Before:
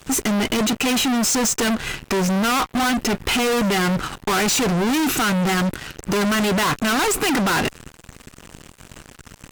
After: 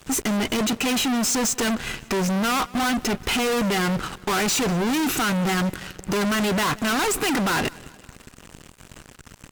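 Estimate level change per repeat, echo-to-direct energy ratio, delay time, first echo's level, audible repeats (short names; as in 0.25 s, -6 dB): -5.5 dB, -21.5 dB, 0.184 s, -23.0 dB, 3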